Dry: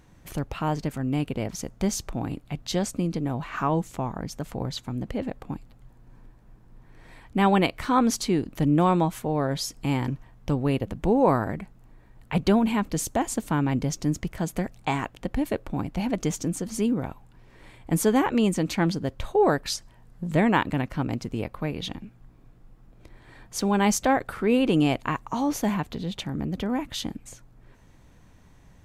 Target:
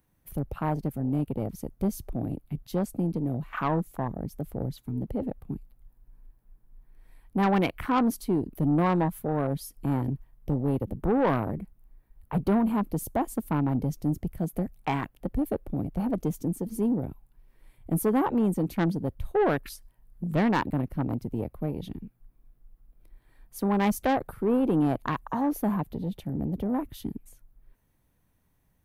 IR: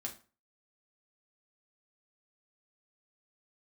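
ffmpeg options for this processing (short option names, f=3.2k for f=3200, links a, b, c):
-filter_complex "[0:a]afwtdn=0.0316,acrossover=split=110[a][b];[b]aexciter=amount=9.4:drive=2.6:freq=9.7k[c];[a][c]amix=inputs=2:normalize=0,asoftclip=type=tanh:threshold=-17.5dB"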